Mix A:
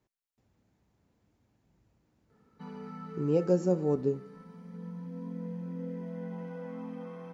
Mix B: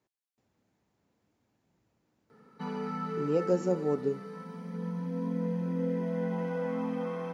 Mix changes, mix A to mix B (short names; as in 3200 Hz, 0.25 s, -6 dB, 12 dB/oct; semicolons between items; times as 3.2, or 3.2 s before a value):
background +10.0 dB; master: add HPF 220 Hz 6 dB/oct